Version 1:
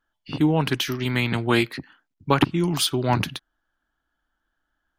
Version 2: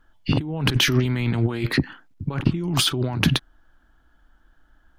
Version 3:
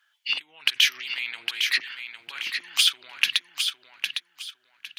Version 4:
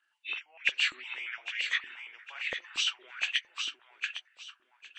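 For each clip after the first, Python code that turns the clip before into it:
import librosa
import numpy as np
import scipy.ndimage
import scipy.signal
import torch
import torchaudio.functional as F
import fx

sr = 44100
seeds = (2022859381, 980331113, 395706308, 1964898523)

y1 = fx.tilt_eq(x, sr, slope=-1.5)
y1 = fx.over_compress(y1, sr, threshold_db=-29.0, ratio=-1.0)
y1 = fx.low_shelf(y1, sr, hz=140.0, db=3.5)
y1 = y1 * librosa.db_to_amplitude(5.0)
y2 = fx.rider(y1, sr, range_db=4, speed_s=0.5)
y2 = fx.highpass_res(y2, sr, hz=2400.0, q=1.7)
y2 = fx.echo_feedback(y2, sr, ms=807, feedback_pct=26, wet_db=-6.5)
y3 = fx.freq_compress(y2, sr, knee_hz=2300.0, ratio=1.5)
y3 = fx.echo_bbd(y3, sr, ms=459, stages=4096, feedback_pct=54, wet_db=-19)
y3 = fx.filter_held_highpass(y3, sr, hz=8.7, low_hz=310.0, high_hz=1900.0)
y3 = y3 * librosa.db_to_amplitude(-8.0)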